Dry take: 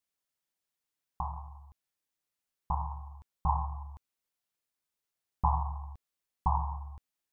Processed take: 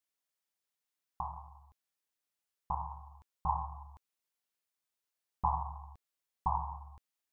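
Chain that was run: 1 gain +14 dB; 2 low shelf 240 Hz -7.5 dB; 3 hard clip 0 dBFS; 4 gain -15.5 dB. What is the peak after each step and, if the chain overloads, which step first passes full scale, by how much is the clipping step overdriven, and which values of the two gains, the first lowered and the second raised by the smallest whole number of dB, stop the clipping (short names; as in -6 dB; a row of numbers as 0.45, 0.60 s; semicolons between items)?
-1.0, -1.5, -1.5, -17.0 dBFS; no overload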